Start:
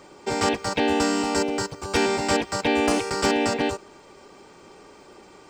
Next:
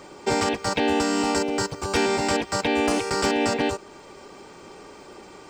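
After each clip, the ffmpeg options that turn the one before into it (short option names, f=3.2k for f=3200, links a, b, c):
-af "alimiter=limit=-16dB:level=0:latency=1:release=403,volume=4dB"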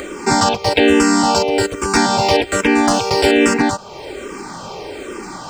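-filter_complex "[0:a]asplit=2[a][b];[b]acompressor=mode=upward:threshold=-25dB:ratio=2.5,volume=-1dB[c];[a][c]amix=inputs=2:normalize=0,asplit=2[d][e];[e]afreqshift=-1.2[f];[d][f]amix=inputs=2:normalize=1,volume=6.5dB"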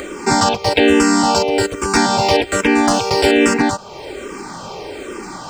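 -af anull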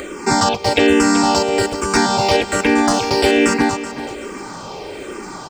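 -af "aecho=1:1:379|758|1137:0.224|0.0716|0.0229,volume=-1dB"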